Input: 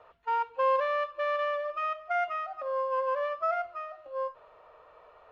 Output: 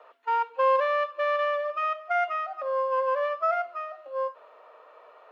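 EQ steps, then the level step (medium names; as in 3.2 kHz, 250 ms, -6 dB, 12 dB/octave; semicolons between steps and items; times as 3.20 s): Chebyshev high-pass 250 Hz, order 10; peaking EQ 320 Hz -4 dB 0.4 oct; +4.0 dB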